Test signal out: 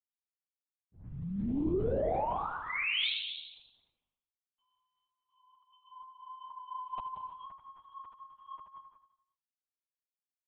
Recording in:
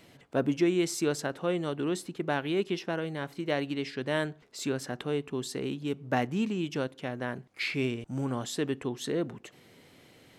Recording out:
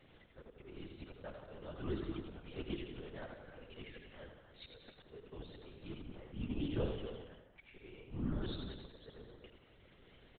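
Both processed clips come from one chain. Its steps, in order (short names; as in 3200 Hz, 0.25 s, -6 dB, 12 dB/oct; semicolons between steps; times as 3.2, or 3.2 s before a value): bin magnitudes rounded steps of 15 dB; dynamic EQ 2200 Hz, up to -3 dB, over -48 dBFS, Q 1.9; in parallel at -2.5 dB: compressor 4:1, threshold -37 dBFS; on the sum: auto swell 0.742 s; crossover distortion -57.5 dBFS; envelope flanger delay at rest 2.9 ms, full sweep at -26 dBFS; soft clip -21.5 dBFS; on a send: feedback echo 88 ms, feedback 50%, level -5.5 dB; on the sum: non-linear reverb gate 0.31 s rising, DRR 8 dB; LPC vocoder at 8 kHz whisper; gain -3.5 dB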